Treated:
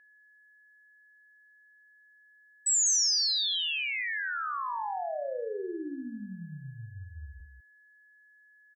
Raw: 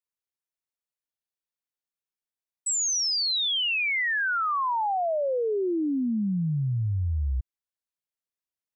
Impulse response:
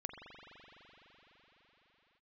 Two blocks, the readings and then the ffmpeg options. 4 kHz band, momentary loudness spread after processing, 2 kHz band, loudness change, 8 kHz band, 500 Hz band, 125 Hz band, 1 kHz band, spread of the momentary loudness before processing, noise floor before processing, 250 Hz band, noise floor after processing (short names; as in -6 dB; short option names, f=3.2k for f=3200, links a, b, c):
-2.5 dB, 22 LU, -6.5 dB, -3.0 dB, +1.5 dB, -8.5 dB, -16.5 dB, -7.5 dB, 6 LU, under -85 dBFS, -12.5 dB, -61 dBFS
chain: -af "bass=f=250:g=-10,treble=f=4k:g=10,aecho=1:1:52.48|198.3:0.501|0.398,aeval=exprs='val(0)+0.00355*sin(2*PI*1700*n/s)':c=same,volume=-9dB"